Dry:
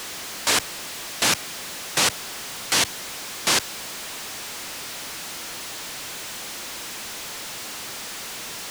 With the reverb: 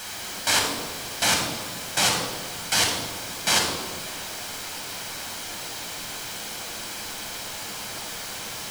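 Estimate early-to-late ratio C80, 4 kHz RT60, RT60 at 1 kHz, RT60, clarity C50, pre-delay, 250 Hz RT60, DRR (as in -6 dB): 5.0 dB, 0.85 s, 1.3 s, 1.6 s, 3.0 dB, 10 ms, 2.1 s, -0.5 dB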